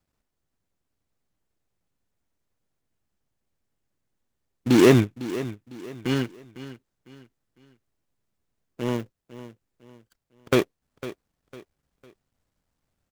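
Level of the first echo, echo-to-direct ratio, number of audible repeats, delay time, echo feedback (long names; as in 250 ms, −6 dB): −15.0 dB, −14.5 dB, 3, 503 ms, 35%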